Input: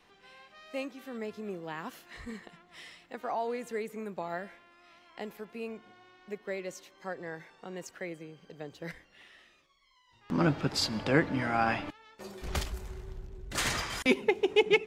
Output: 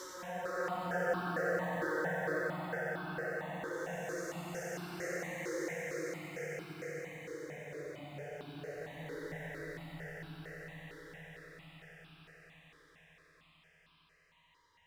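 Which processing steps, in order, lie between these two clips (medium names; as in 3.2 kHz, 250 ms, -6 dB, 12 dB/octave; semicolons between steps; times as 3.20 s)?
Doppler pass-by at 5.91 s, 16 m/s, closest 11 m; in parallel at -10 dB: short-mantissa float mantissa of 2-bit; on the sum: Paulstretch 4.5×, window 0.50 s, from 6.65 s; on a send: echo with a slow build-up 91 ms, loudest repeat 8, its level -11 dB; on the sum: stepped phaser 4.4 Hz 710–1900 Hz; trim +9 dB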